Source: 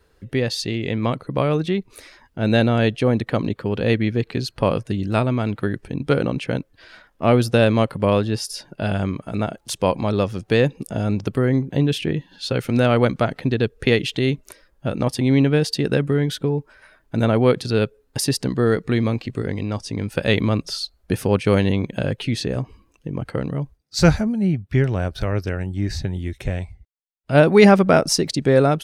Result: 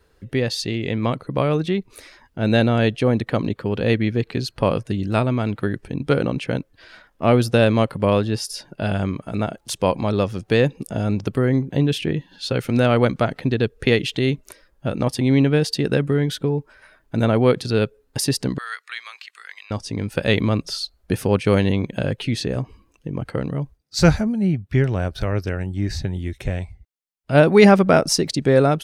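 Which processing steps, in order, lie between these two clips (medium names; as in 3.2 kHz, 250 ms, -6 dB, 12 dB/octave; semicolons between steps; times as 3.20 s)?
18.58–19.71 s: high-pass 1.3 kHz 24 dB/octave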